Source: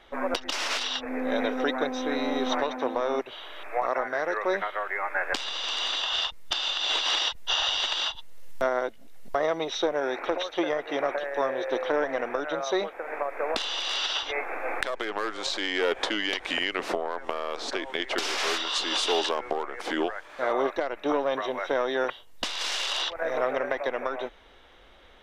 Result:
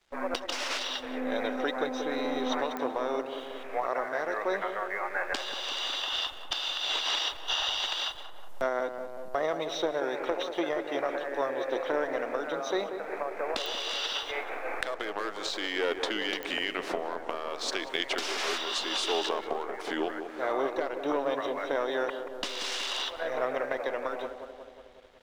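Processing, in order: 17.61–18.13 high shelf 2700 Hz +8.5 dB; tape echo 0.184 s, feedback 79%, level -6.5 dB, low-pass 1200 Hz; crossover distortion -52.5 dBFS; pops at 2.77/13.66/16.43, -17 dBFS; gain -3.5 dB

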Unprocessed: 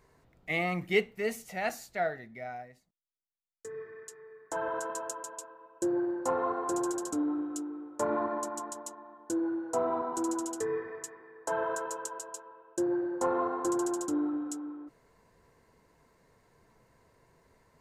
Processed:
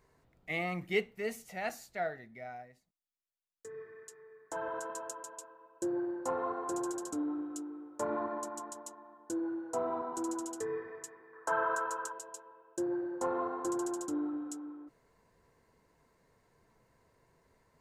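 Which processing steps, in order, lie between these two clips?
11.33–12.12 bell 1300 Hz +13 dB 0.8 oct; gain -4.5 dB

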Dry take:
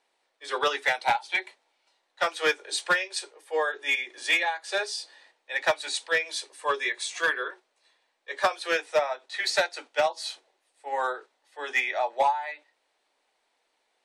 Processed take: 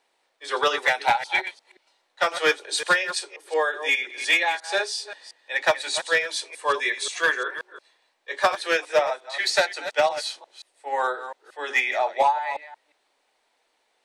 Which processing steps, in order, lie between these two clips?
reverse delay 0.177 s, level -11.5 dB; gain +3.5 dB

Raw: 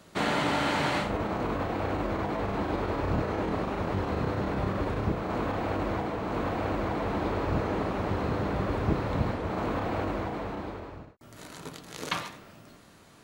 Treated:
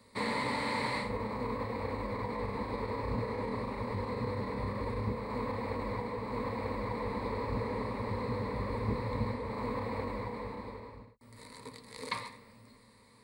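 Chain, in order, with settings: ripple EQ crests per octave 0.95, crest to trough 15 dB; gain -8.5 dB

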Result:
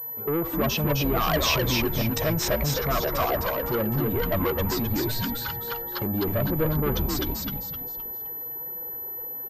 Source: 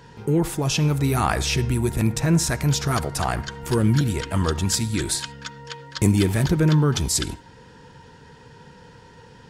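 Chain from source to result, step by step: per-bin expansion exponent 1.5; bell 310 Hz +10 dB 2.8 oct; compressor 3:1, threshold -18 dBFS, peak gain reduction 9 dB; limiter -18 dBFS, peak gain reduction 8.5 dB; small resonant body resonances 610/1100 Hz, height 16 dB, ringing for 20 ms; soft clip -22.5 dBFS, distortion -9 dB; high shelf 2200 Hz +5.5 dB, from 1.28 s +12 dB, from 2.48 s +2.5 dB; frequency-shifting echo 0.259 s, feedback 37%, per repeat -110 Hz, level -3 dB; pulse-width modulation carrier 12000 Hz

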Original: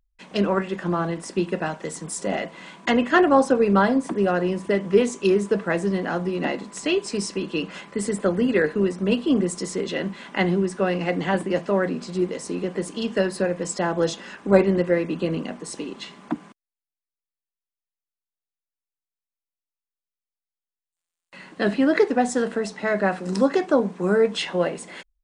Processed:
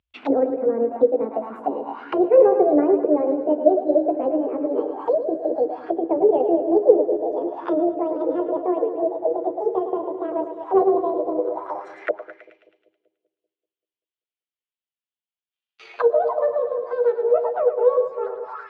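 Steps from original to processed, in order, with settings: gliding pitch shift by +11 st starting unshifted; HPF 77 Hz 12 dB/oct; notch 410 Hz, Q 12; split-band echo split 330 Hz, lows 0.261 s, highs 0.145 s, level -8.5 dB; speed mistake 33 rpm record played at 45 rpm; envelope low-pass 510–3100 Hz down, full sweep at -24 dBFS; gain -1 dB

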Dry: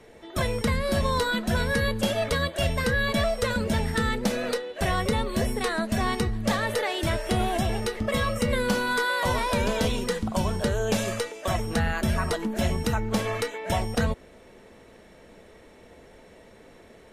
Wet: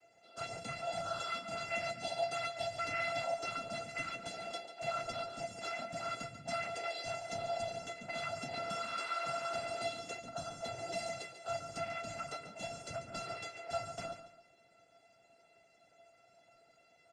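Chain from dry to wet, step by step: noise vocoder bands 8; resonator 680 Hz, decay 0.16 s, harmonics all, mix 100%; feedback echo 0.142 s, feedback 29%, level -11 dB; gain +4 dB

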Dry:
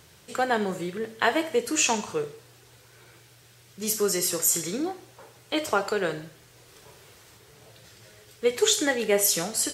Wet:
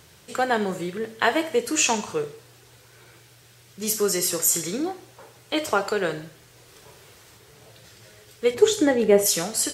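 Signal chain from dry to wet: 8.54–9.26 tilt shelf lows +7.5 dB; gain +2 dB

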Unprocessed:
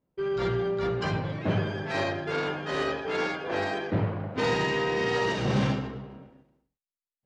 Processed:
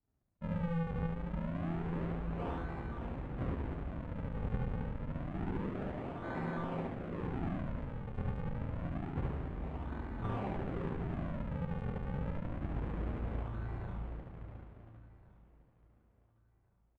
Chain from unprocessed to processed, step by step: sample sorter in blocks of 16 samples; HPF 56 Hz; bell 450 Hz -6.5 dB 0.21 oct; notches 50/100/150/200/250/300/350/400 Hz; compressor, threshold -32 dBFS, peak gain reduction 9.5 dB; decimation with a swept rate 32×, swing 160% 0.64 Hz; air absorption 140 m; doubler 31 ms -2 dB; feedback echo 0.605 s, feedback 27%, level -21 dB; speed mistake 78 rpm record played at 33 rpm; gain -3.5 dB

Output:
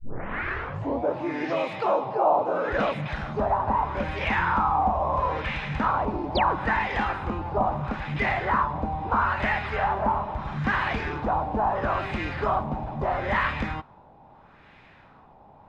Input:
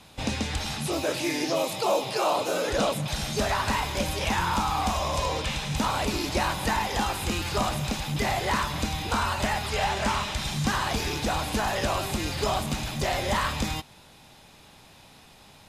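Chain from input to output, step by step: tape start at the beginning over 1.12 s; LFO low-pass sine 0.76 Hz 810–2100 Hz; painted sound fall, 6.35–6.56, 260–5200 Hz -29 dBFS; gain -1 dB

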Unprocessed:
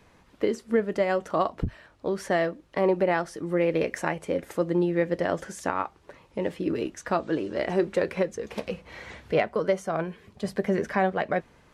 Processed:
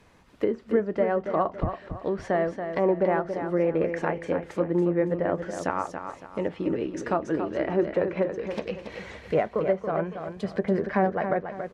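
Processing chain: treble ducked by the level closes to 1500 Hz, closed at -22.5 dBFS; feedback echo 0.28 s, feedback 35%, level -8 dB

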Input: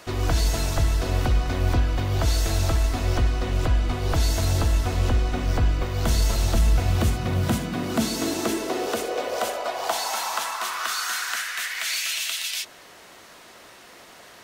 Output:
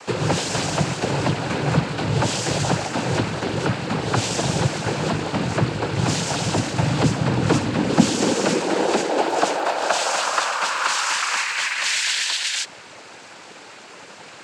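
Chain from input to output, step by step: notch 4700 Hz, Q 5.9; noise vocoder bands 8; 9.17–11.75 crackle 140/s -45 dBFS; gain +7 dB

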